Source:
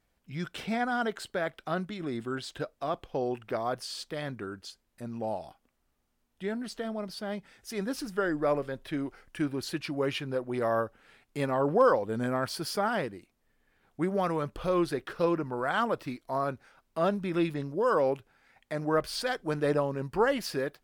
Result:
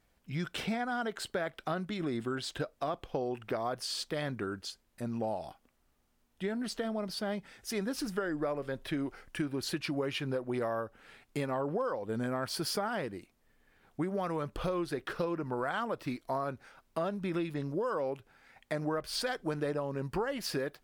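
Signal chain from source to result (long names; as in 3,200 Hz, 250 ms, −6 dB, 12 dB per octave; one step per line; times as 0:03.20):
downward compressor 10 to 1, threshold −33 dBFS, peak gain reduction 15.5 dB
level +3 dB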